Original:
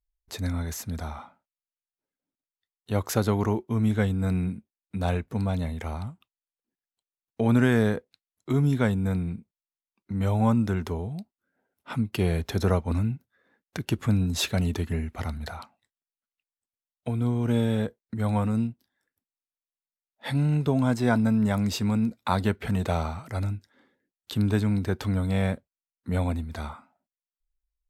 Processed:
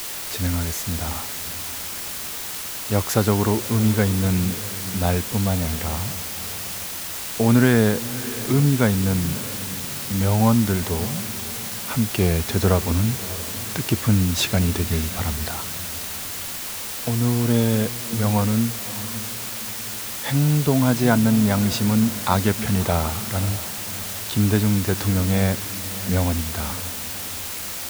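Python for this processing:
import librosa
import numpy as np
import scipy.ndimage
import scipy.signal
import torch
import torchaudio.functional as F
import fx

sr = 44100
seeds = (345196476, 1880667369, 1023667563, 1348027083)

y = fx.quant_dither(x, sr, seeds[0], bits=6, dither='triangular')
y = fx.echo_diffused(y, sr, ms=599, feedback_pct=43, wet_db=-15)
y = y * librosa.db_to_amplitude(5.0)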